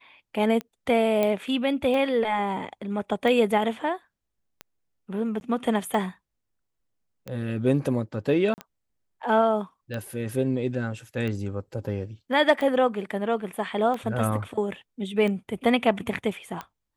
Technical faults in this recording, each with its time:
tick 45 rpm -20 dBFS
1.23 pop -12 dBFS
5.4–5.41 gap 11 ms
8.54–8.58 gap 39 ms

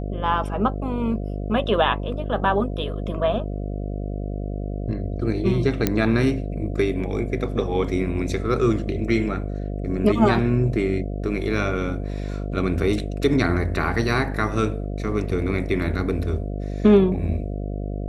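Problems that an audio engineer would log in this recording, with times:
buzz 50 Hz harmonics 14 -28 dBFS
5.87 pop -5 dBFS

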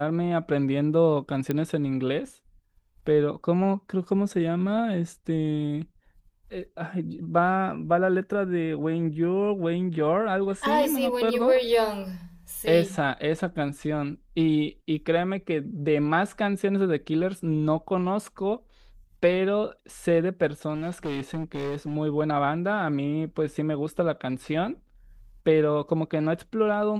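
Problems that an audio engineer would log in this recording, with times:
1.51 pop -14 dBFS
20.74–21.96 clipped -26.5 dBFS

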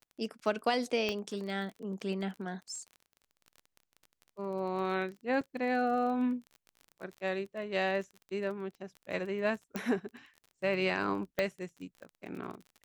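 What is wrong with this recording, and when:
crackle 27/s -41 dBFS
1.09 pop -19 dBFS
5.41 gap 4.3 ms
9.76 pop -21 dBFS
11.39 pop -17 dBFS

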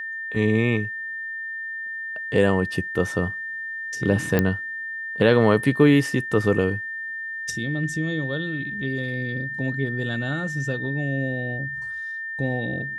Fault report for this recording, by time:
tone 1800 Hz -29 dBFS
4.39 pop -7 dBFS

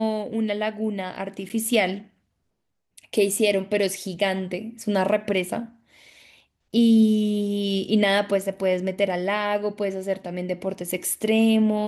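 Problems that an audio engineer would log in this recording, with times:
1.49–1.5 gap 8.6 ms

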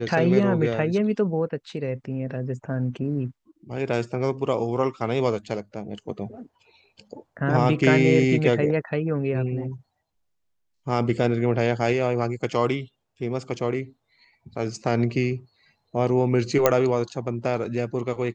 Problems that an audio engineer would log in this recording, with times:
16.66 pop -3 dBFS

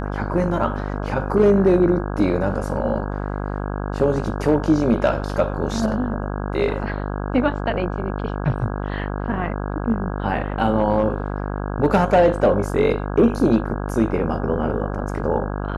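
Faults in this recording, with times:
buzz 50 Hz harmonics 33 -26 dBFS

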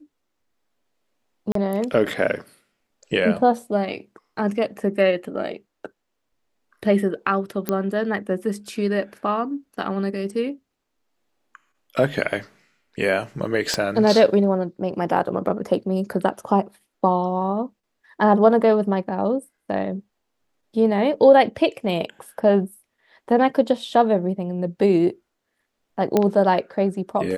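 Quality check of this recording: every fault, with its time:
1.52–1.55 gap 33 ms
7.69 pop -9 dBFS
13.74 pop -9 dBFS
26.17 pop -6 dBFS

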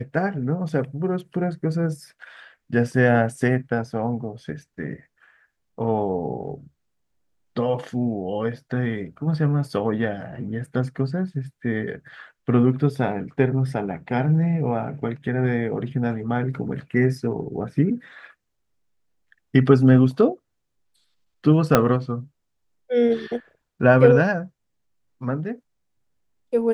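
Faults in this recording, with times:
21.75 pop -1 dBFS

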